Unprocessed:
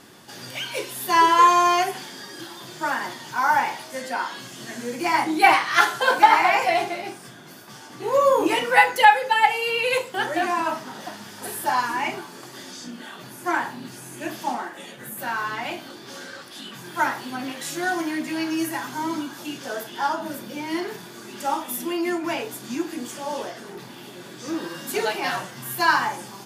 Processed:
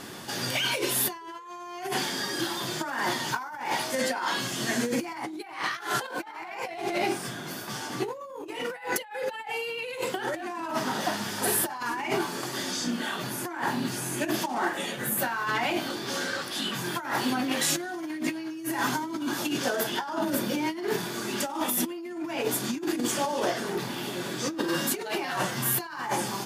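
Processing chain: dynamic bell 340 Hz, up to +5 dB, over -37 dBFS, Q 2; compressor with a negative ratio -32 dBFS, ratio -1

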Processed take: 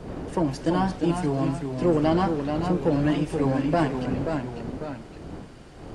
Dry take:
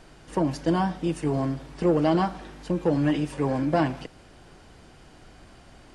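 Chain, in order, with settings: wind noise 360 Hz -38 dBFS; ever faster or slower copies 310 ms, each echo -1 st, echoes 2, each echo -6 dB

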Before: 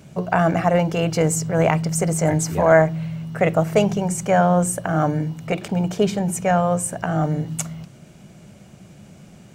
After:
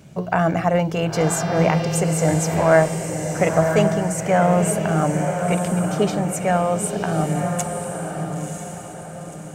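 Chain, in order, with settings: 1.15–1.99 s: mains buzz 400 Hz, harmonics 15, -36 dBFS -3 dB/octave; echo that smears into a reverb 995 ms, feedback 42%, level -5 dB; trim -1 dB

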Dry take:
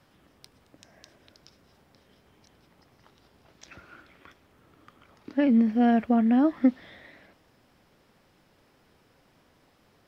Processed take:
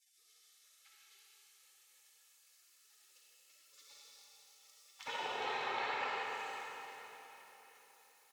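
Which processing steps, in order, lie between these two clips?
gliding tape speed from 82% -> 160%; peaking EQ 900 Hz +9 dB 0.6 oct; spectral gate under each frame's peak -30 dB weak; tilt EQ -4 dB/octave; compression 12:1, threshold -55 dBFS, peak gain reduction 20 dB; high-pass 620 Hz 12 dB/octave; comb 2.3 ms, depth 47%; reverberation RT60 4.0 s, pre-delay 15 ms, DRR -6.5 dB; trim +17.5 dB

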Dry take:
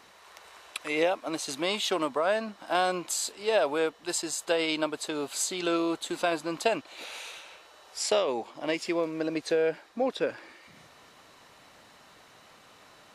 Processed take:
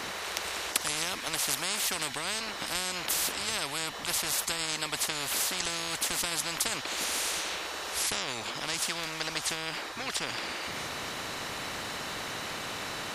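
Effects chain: spectrum-flattening compressor 10:1; trim +6 dB

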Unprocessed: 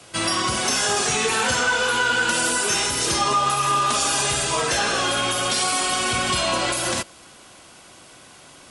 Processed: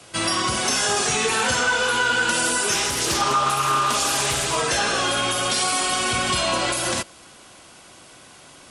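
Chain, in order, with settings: 2.71–4.57 s: loudspeaker Doppler distortion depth 0.32 ms

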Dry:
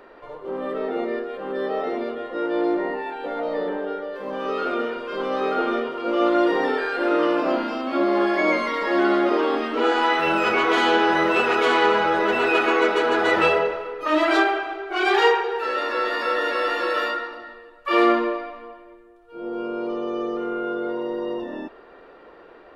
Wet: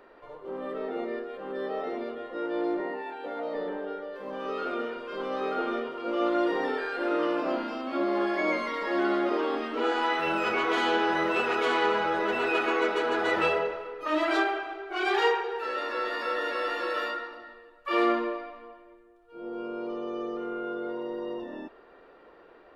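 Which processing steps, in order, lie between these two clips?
2.80–3.55 s: high-pass 170 Hz 24 dB/octave; trim -7 dB

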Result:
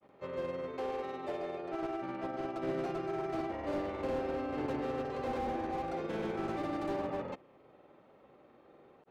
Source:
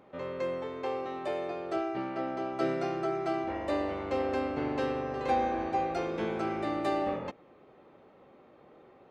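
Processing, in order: granulator 100 ms, grains 20 per s, pitch spread up and down by 0 st; slew-rate limiter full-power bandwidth 18 Hz; trim -2 dB

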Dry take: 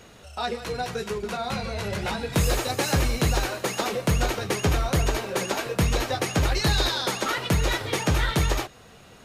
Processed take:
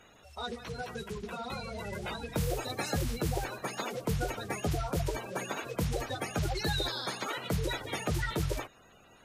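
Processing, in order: coarse spectral quantiser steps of 30 dB; trim -8.5 dB

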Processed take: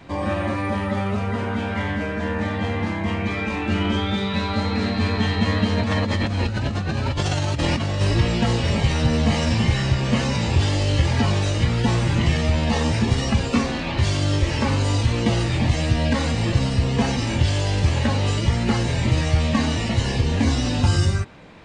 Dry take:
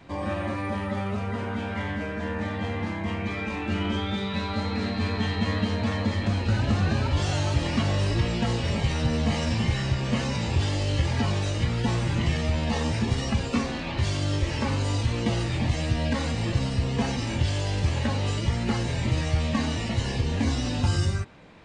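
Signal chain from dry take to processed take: 5.74–8.01 s: compressor with a negative ratio -28 dBFS, ratio -1; trim +5.5 dB

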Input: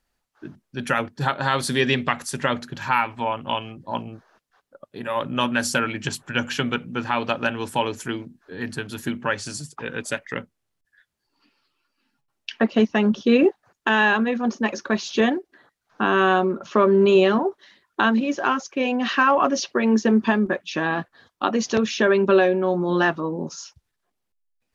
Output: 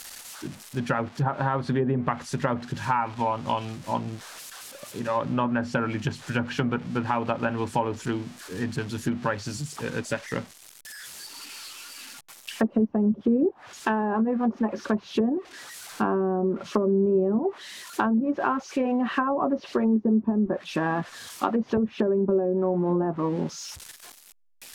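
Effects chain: zero-crossing glitches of -20 dBFS; tilt EQ -2.5 dB/octave; low-pass that closes with the level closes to 440 Hz, closed at -11.5 dBFS; dynamic bell 960 Hz, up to +5 dB, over -34 dBFS, Q 1.1; compression 2:1, threshold -20 dBFS, peak gain reduction 6.5 dB; trim -3 dB

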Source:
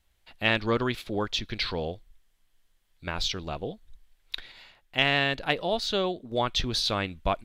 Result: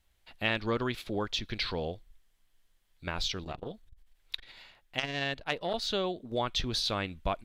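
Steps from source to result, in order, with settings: compression 1.5:1, threshold -30 dBFS, peak gain reduction 5 dB; 3.44–5.74 s: transformer saturation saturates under 1.5 kHz; trim -1.5 dB

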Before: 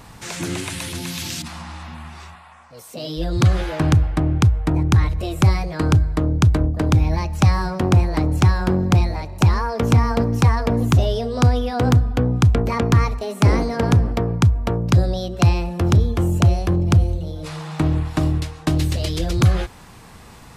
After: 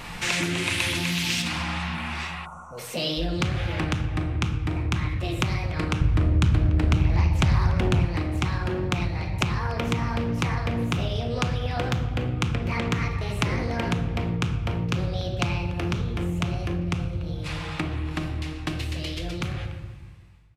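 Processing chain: fade out at the end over 6.56 s; hum notches 60/120/180 Hz; simulated room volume 460 m³, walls mixed, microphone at 0.9 m; compression 4:1, threshold -28 dBFS, peak gain reduction 16.5 dB; peaking EQ 2.5 kHz +10 dB 1.3 oct; speakerphone echo 290 ms, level -18 dB; 2.46–2.78 s: time-frequency box 1.5–5.6 kHz -29 dB; 6.01–8.05 s: bass shelf 130 Hz +10.5 dB; loudspeaker Doppler distortion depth 0.43 ms; trim +2 dB

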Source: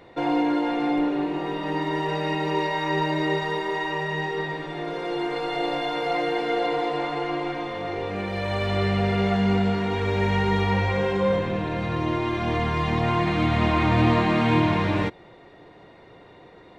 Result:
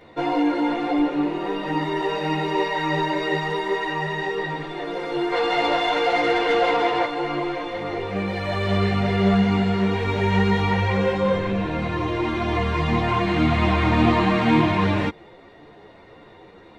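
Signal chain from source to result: 5.32–7.05 s: overdrive pedal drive 15 dB, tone 2.8 kHz, clips at -13 dBFS; three-phase chorus; trim +5 dB

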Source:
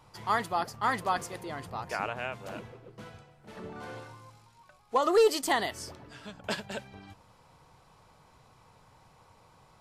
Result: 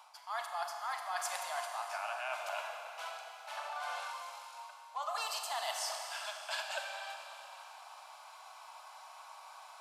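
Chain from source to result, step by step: steep high-pass 630 Hz 72 dB/octave; band-stop 1.9 kHz, Q 6.7; reverse; compression 20:1, threshold -44 dBFS, peak gain reduction 23 dB; reverse; Schroeder reverb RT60 3 s, combs from 30 ms, DRR 3 dB; trim +8 dB

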